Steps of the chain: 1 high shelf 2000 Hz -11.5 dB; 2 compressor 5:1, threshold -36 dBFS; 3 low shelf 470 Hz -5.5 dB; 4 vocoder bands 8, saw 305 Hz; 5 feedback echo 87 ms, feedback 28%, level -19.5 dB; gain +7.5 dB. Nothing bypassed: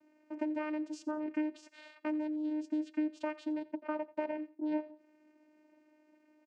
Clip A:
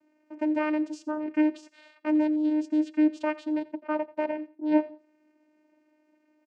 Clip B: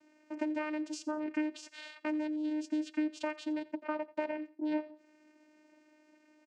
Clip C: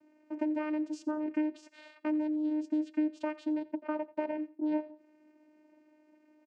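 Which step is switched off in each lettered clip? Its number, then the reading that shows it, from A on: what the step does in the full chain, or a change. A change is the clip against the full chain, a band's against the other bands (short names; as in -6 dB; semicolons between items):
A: 2, mean gain reduction 7.0 dB; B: 1, 2 kHz band +3.5 dB; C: 3, 250 Hz band +2.0 dB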